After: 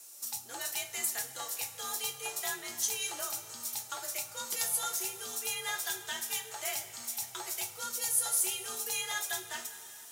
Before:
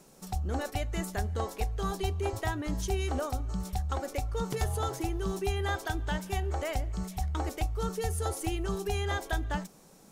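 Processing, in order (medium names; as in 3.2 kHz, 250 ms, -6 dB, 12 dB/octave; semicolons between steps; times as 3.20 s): differentiator; frequency shift +50 Hz; two-slope reverb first 0.23 s, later 3.8 s, from -20 dB, DRR 1 dB; trim +8.5 dB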